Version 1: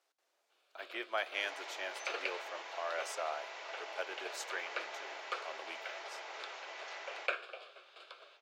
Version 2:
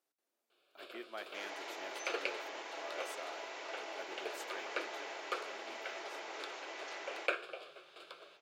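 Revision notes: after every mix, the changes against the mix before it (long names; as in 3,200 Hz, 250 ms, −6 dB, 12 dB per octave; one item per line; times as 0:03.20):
speech −11.0 dB
master: remove three-way crossover with the lows and the highs turned down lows −24 dB, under 440 Hz, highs −13 dB, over 7,400 Hz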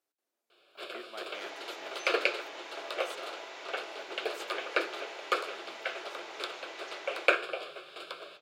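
first sound +10.0 dB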